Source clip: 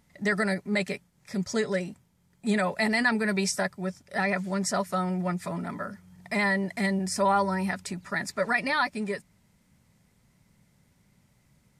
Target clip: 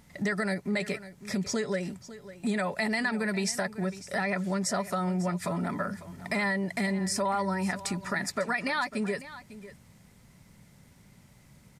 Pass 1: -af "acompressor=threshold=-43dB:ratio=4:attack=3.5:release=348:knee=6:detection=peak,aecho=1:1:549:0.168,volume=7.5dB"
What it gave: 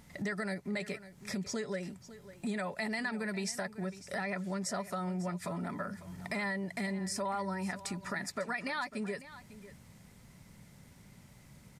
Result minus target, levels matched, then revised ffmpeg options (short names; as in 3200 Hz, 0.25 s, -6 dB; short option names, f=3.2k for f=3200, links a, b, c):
compressor: peak gain reduction +7 dB
-af "acompressor=threshold=-34dB:ratio=4:attack=3.5:release=348:knee=6:detection=peak,aecho=1:1:549:0.168,volume=7.5dB"